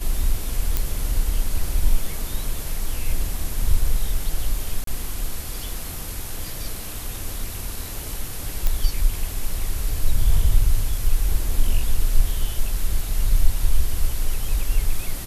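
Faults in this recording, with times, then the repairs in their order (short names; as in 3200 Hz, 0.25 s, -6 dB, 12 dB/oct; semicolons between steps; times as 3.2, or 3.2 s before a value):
0.77 pop -6 dBFS
4.84–4.87 gap 33 ms
8.67 pop -7 dBFS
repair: de-click; interpolate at 4.84, 33 ms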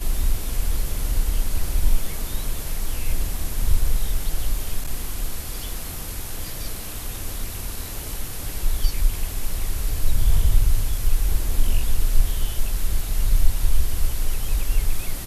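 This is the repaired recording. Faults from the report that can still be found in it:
none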